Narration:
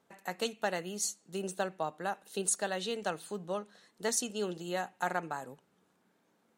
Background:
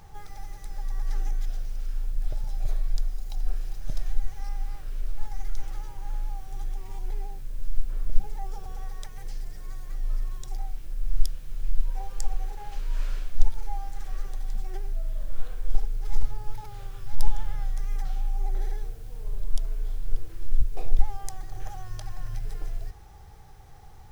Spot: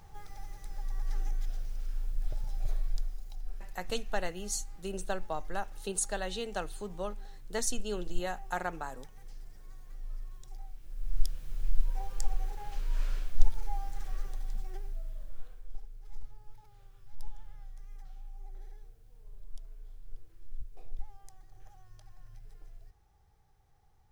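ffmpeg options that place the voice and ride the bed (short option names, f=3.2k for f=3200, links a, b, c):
-filter_complex "[0:a]adelay=3500,volume=-1.5dB[a];[1:a]volume=4.5dB,afade=t=out:st=2.79:d=0.64:silence=0.421697,afade=t=in:st=10.79:d=0.64:silence=0.334965,afade=t=out:st=13.97:d=1.72:silence=0.16788[b];[a][b]amix=inputs=2:normalize=0"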